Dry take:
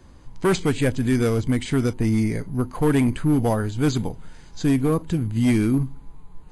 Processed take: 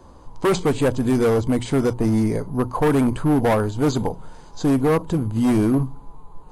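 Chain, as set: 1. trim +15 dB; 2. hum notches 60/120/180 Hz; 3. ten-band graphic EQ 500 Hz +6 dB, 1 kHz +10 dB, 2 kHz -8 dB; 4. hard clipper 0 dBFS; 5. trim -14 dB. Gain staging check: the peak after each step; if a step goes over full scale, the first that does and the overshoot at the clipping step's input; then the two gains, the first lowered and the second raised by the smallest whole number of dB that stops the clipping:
+1.5 dBFS, +4.0 dBFS, +10.0 dBFS, 0.0 dBFS, -14.0 dBFS; step 1, 10.0 dB; step 1 +5 dB, step 5 -4 dB

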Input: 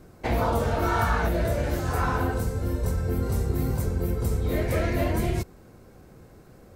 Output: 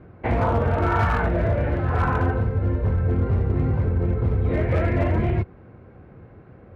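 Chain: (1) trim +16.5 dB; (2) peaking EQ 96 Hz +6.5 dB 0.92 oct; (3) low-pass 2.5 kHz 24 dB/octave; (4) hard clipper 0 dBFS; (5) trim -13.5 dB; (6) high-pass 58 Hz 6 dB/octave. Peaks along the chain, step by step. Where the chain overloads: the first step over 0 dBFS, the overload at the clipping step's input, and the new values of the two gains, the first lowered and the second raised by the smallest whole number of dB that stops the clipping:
+5.0 dBFS, +6.5 dBFS, +6.5 dBFS, 0.0 dBFS, -13.5 dBFS, -11.0 dBFS; step 1, 6.5 dB; step 1 +9.5 dB, step 5 -6.5 dB

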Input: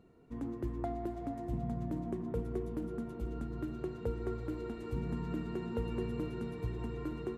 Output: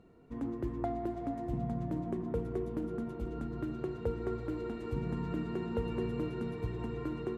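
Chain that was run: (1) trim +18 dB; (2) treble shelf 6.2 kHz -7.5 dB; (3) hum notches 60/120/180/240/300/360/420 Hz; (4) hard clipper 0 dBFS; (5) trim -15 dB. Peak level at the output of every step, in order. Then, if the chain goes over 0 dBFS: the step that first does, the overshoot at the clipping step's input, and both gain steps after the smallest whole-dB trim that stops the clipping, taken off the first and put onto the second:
-5.0 dBFS, -5.0 dBFS, -5.5 dBFS, -5.5 dBFS, -20.5 dBFS; nothing clips

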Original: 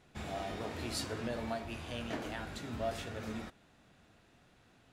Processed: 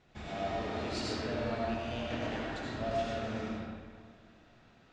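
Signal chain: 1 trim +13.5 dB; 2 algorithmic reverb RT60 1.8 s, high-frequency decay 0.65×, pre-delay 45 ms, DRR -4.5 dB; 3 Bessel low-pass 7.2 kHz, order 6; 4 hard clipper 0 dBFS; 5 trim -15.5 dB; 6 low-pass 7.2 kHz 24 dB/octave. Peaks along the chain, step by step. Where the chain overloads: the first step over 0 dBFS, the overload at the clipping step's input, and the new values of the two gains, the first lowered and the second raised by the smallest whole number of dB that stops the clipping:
-11.5 dBFS, -5.0 dBFS, -5.5 dBFS, -5.5 dBFS, -21.0 dBFS, -21.0 dBFS; nothing clips

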